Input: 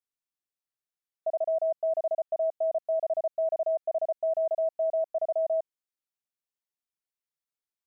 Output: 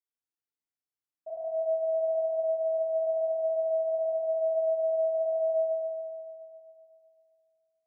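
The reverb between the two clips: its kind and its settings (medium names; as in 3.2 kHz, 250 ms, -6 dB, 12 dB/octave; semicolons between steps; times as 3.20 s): FDN reverb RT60 2.5 s, low-frequency decay 1.2×, high-frequency decay 0.45×, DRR -10 dB; trim -15 dB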